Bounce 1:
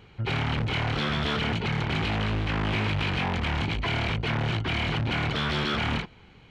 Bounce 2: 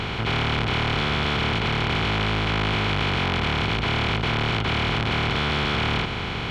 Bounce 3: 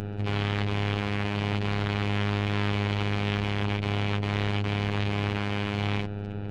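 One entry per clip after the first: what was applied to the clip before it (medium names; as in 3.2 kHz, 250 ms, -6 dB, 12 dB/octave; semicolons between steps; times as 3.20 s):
spectral levelling over time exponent 0.2; trim -2.5 dB
local Wiener filter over 41 samples; robot voice 102 Hz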